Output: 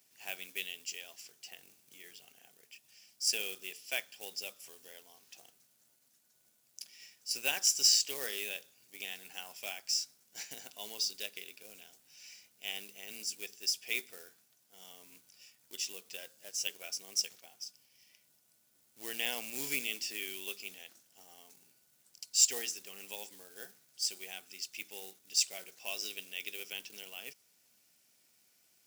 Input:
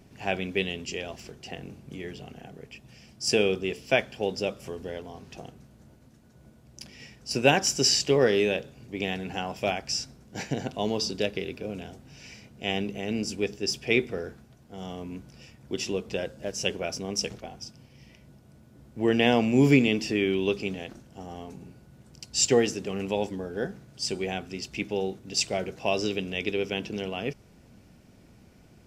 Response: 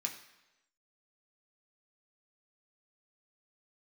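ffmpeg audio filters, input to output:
-af "acrusher=bits=5:mode=log:mix=0:aa=0.000001,aderivative"

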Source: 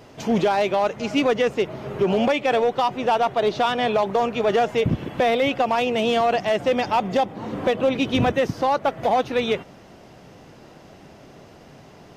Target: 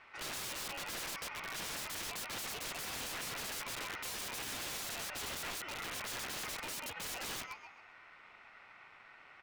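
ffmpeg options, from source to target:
ffmpeg -i in.wav -filter_complex "[0:a]acrossover=split=500[link_01][link_02];[link_02]adynamicsmooth=sensitivity=1.5:basefreq=2200[link_03];[link_01][link_03]amix=inputs=2:normalize=0,asplit=5[link_04][link_05][link_06][link_07][link_08];[link_05]adelay=173,afreqshift=67,volume=-14dB[link_09];[link_06]adelay=346,afreqshift=134,volume=-22.6dB[link_10];[link_07]adelay=519,afreqshift=201,volume=-31.3dB[link_11];[link_08]adelay=692,afreqshift=268,volume=-39.9dB[link_12];[link_04][link_09][link_10][link_11][link_12]amix=inputs=5:normalize=0,aeval=exprs='(mod(17.8*val(0)+1,2)-1)/17.8':channel_layout=same,aeval=exprs='val(0)*sin(2*PI*1300*n/s)':channel_layout=same,asetrate=56889,aresample=44100,volume=-8.5dB" out.wav

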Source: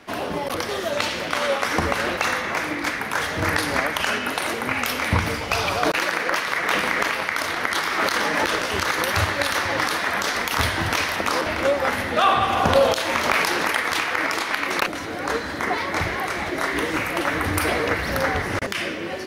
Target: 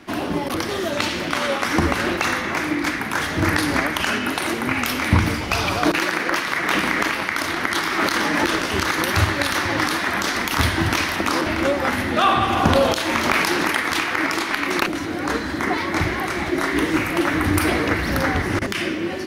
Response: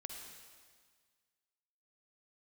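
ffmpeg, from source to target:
-filter_complex "[0:a]asplit=2[link_01][link_02];[link_02]lowshelf=frequency=480:width_type=q:width=3:gain=10[link_03];[1:a]atrim=start_sample=2205,atrim=end_sample=3528[link_04];[link_03][link_04]afir=irnorm=-1:irlink=0,volume=-5.5dB[link_05];[link_01][link_05]amix=inputs=2:normalize=0,volume=-1dB"

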